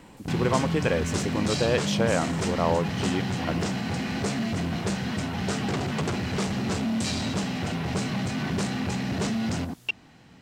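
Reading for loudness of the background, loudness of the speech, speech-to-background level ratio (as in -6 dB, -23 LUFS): -28.5 LUFS, -28.0 LUFS, 0.5 dB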